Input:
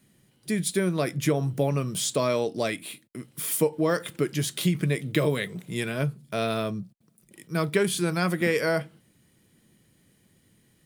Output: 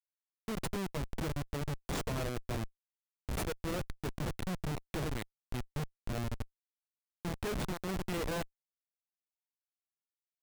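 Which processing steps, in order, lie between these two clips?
speed mistake 24 fps film run at 25 fps; Schmitt trigger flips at -22.5 dBFS; gain -6.5 dB

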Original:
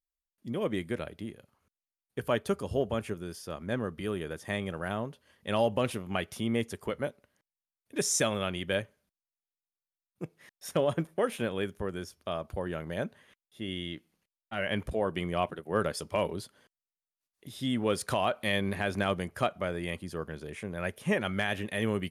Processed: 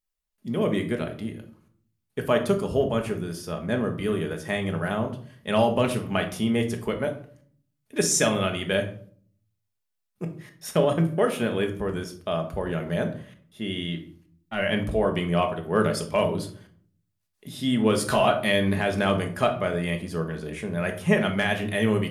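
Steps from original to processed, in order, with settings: 17.93–18.44 doubler 14 ms -3.5 dB; shoebox room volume 570 m³, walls furnished, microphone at 1.4 m; gain +4.5 dB

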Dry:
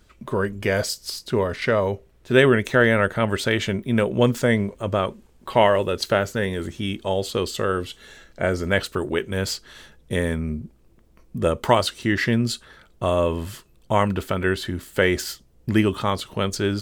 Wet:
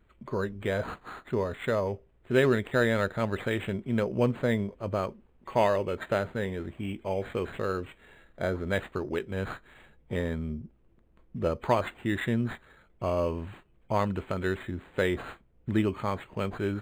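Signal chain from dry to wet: nonlinear frequency compression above 3000 Hz 1.5:1; decimation joined by straight lines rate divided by 8×; gain -7 dB

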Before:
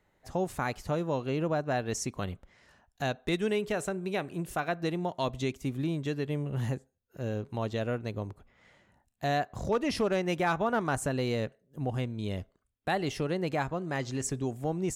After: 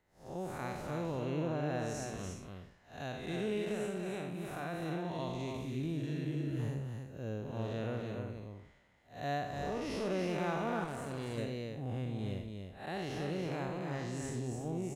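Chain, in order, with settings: time blur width 0.182 s; on a send: echo 0.29 s -5 dB; 6.01–6.57 on the sum: spectral repair 200–1300 Hz before; 10.84–11.38 tube stage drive 31 dB, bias 0.8; gain -4 dB

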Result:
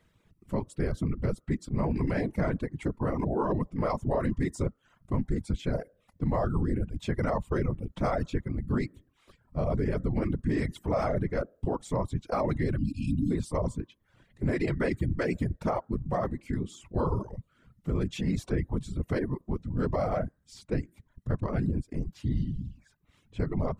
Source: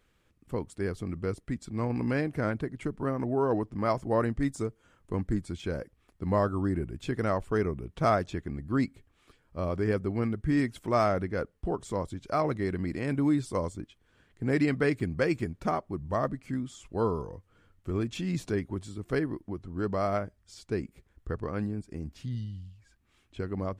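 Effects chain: bell 88 Hz +11 dB 1.5 oct; de-hum 262.7 Hz, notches 7; small resonant body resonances 590/960/2000/3800 Hz, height 8 dB; whisperiser; spectral delete 12.79–13.31, 320–2400 Hz; limiter -18.5 dBFS, peak gain reduction 11 dB; reverb removal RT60 0.54 s

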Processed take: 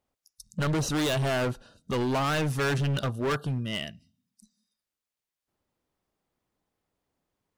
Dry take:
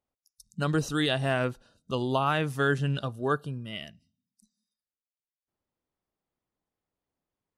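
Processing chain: high shelf 9200 Hz -3.5 dB; hard clip -31.5 dBFS, distortion -5 dB; gain +7 dB

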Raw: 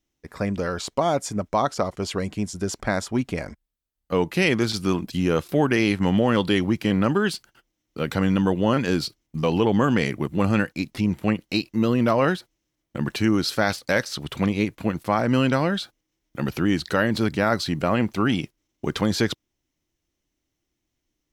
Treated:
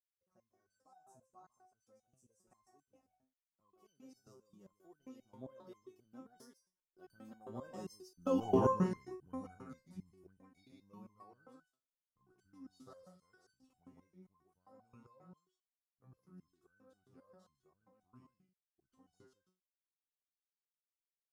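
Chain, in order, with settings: Doppler pass-by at 8.44, 43 m/s, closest 5.8 m; band shelf 2600 Hz -14 dB; echo 0.15 s -6.5 dB; stepped resonator 7.5 Hz 130–1500 Hz; gain +7 dB

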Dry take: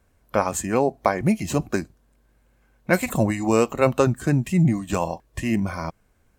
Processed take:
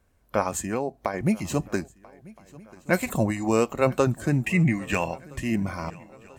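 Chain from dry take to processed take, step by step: 0.65–1.14 compressor 2.5:1, threshold -22 dBFS, peak gain reduction 6.5 dB; 4.46–5.24 band shelf 2100 Hz +13 dB 1 oct; swung echo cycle 1.318 s, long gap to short 3:1, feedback 46%, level -23 dB; gain -3 dB

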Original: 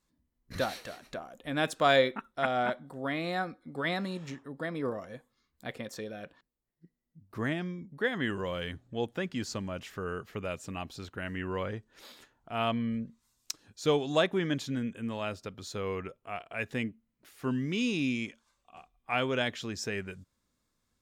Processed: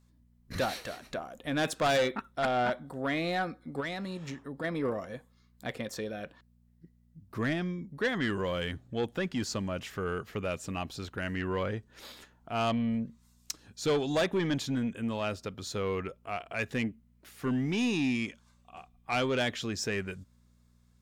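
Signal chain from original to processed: soft clip -26 dBFS, distortion -10 dB; 3.8–4.64 compressor 3:1, threshold -39 dBFS, peak gain reduction 7 dB; buzz 60 Hz, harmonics 4, -68 dBFS -4 dB/oct; gain +3.5 dB

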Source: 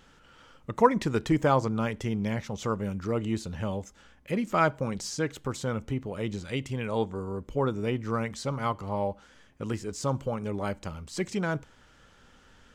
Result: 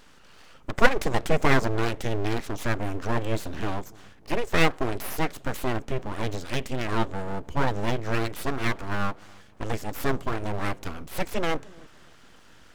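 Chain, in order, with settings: dark delay 0.294 s, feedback 37%, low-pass 470 Hz, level -21 dB; full-wave rectifier; gain +5.5 dB

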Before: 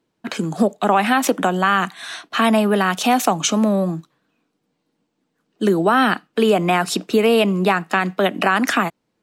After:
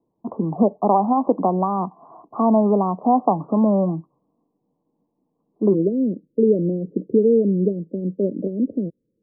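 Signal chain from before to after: steep low-pass 1100 Hz 96 dB/oct, from 5.73 s 550 Hz

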